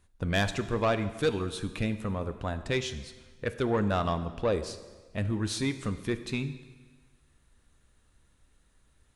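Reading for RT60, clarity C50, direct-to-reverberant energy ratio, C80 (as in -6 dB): 1.4 s, 12.5 dB, 10.0 dB, 13.5 dB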